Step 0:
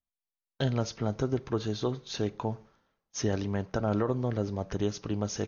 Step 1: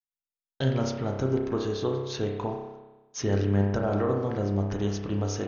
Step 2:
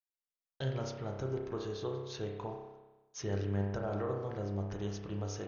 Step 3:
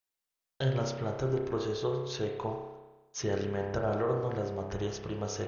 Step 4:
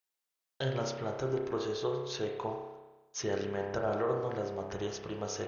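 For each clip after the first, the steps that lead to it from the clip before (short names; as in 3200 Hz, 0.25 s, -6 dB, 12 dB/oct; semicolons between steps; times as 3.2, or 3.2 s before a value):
gate with hold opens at -54 dBFS; reverb RT60 1.1 s, pre-delay 30 ms, DRR 1 dB
bell 250 Hz -14.5 dB 0.21 oct; gain -9 dB
notches 50/100/150/200/250/300 Hz; gain +6.5 dB
low shelf 160 Hz -10 dB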